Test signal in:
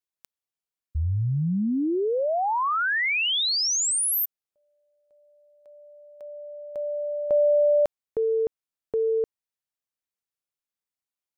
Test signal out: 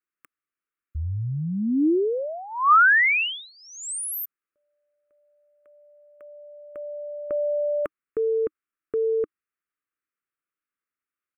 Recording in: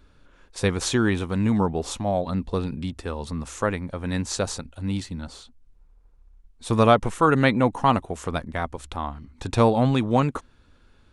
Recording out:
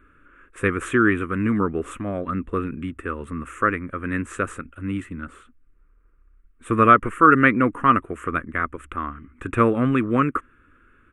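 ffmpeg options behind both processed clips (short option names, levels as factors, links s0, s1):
-af "firequalizer=gain_entry='entry(180,0);entry(310,9);entry(830,-12);entry(1200,14);entry(2700,4);entry(4400,-27);entry(8000,-3)':delay=0.05:min_phase=1,volume=0.708"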